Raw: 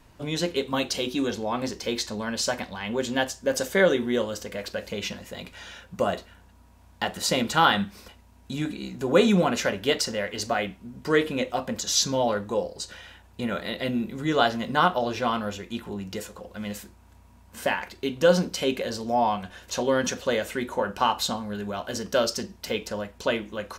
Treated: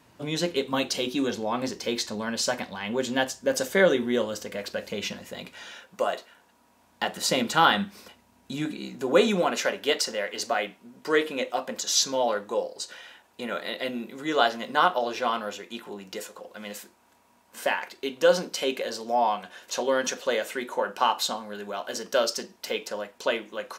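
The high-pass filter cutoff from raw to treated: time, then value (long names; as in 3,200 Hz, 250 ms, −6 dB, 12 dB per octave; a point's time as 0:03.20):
0:05.34 130 Hz
0:06.09 470 Hz
0:07.25 170 Hz
0:08.75 170 Hz
0:09.50 340 Hz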